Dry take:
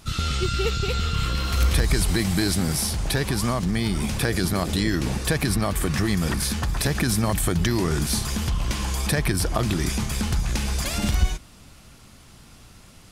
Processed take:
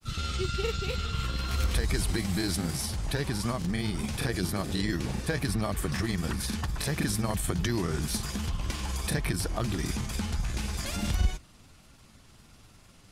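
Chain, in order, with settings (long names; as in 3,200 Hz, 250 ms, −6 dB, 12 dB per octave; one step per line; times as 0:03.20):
granular cloud, spray 21 ms, pitch spread up and down by 0 semitones
level −5.5 dB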